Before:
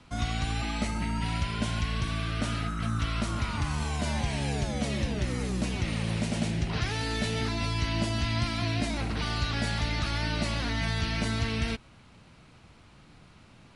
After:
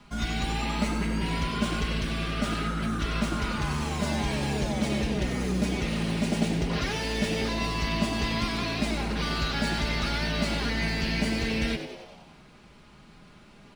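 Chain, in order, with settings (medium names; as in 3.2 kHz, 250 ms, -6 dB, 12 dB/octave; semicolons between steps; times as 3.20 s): median filter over 3 samples; comb 4.9 ms, depth 74%; frequency-shifting echo 95 ms, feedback 59%, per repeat +100 Hz, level -10 dB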